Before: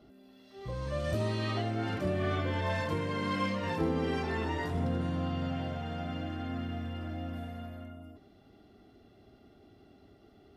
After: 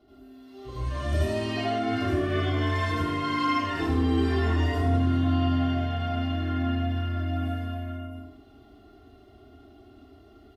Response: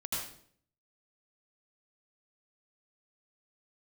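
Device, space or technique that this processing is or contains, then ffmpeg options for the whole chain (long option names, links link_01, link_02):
microphone above a desk: -filter_complex "[0:a]aecho=1:1:2.8:0.83[link_01];[1:a]atrim=start_sample=2205[link_02];[link_01][link_02]afir=irnorm=-1:irlink=0"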